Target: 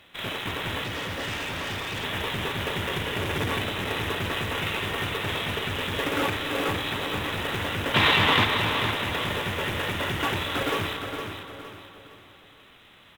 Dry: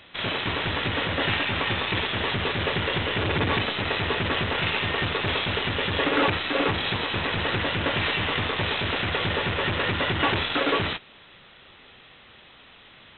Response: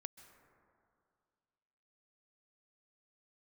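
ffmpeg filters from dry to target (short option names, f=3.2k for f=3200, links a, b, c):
-filter_complex "[0:a]acrusher=bits=3:mode=log:mix=0:aa=0.000001,asettb=1/sr,asplit=3[a][b][c];[a]atrim=end=7.944[d];[b]atrim=start=7.94:end=8.45,asetpts=PTS-STARTPTS,afade=t=in:d=0.004:c=qsin,afade=t=out:st=0.506:d=0.004:c=qsin,equalizer=f=125:t=o:w=1:g=7,equalizer=f=250:t=o:w=1:g=8,equalizer=f=500:t=o:w=1:g=4,equalizer=f=1k:t=o:w=1:g=11,equalizer=f=2k:t=o:w=1:g=5,equalizer=f=4k:t=o:w=1:g=11[e];[c]atrim=start=8.446[f];[d][e]acrossfade=d=0.004:c1=hsin:c2=qsin[g];[g][f]acrossfade=d=0.004:c1=qsin:c2=hsin,aecho=1:1:462|924|1386|1848:0.422|0.148|0.0517|0.0181[h];[1:a]atrim=start_sample=2205,asetrate=35721,aresample=44100[i];[h][i]afir=irnorm=-1:irlink=0,asettb=1/sr,asplit=3[j][k][l];[j]atrim=end=0.844[m];[k]atrim=start=0.84:end=2.04,asetpts=PTS-STARTPTS,afade=t=in:d=0.004:c=qsin,afade=t=out:st=1.196:d=0.004:c=qsin,asoftclip=type=hard:threshold=-28.5dB[n];[l]atrim=start=2.036[o];[m][n]acrossfade=d=0.004:c1=hsin:c2=qsin[p];[p][o]acrossfade=d=0.004:c1=qsin:c2=hsin"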